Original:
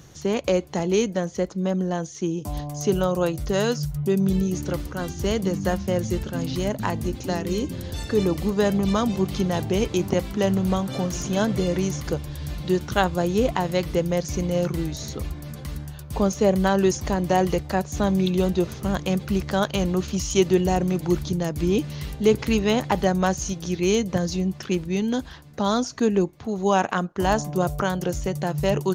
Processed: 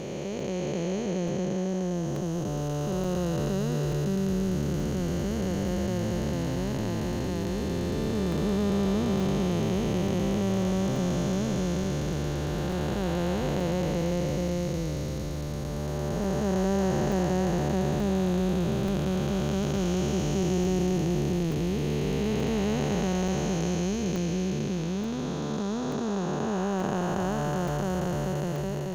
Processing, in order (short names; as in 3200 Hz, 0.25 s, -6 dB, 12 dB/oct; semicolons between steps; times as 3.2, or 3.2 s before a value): time blur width 1.23 s; crackling interface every 0.88 s, samples 128, zero, from 0.4